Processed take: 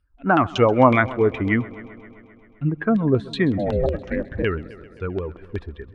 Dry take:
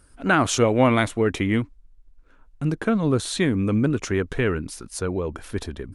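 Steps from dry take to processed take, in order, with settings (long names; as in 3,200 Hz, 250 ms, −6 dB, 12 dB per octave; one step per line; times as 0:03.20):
spectral dynamics exaggerated over time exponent 1.5
0:03.57–0:04.42: ring modulation 450 Hz → 76 Hz
auto-filter low-pass saw down 5.4 Hz 580–3,400 Hz
on a send: echo machine with several playback heads 131 ms, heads first and second, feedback 60%, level −22 dB
on the sum: level +3 dB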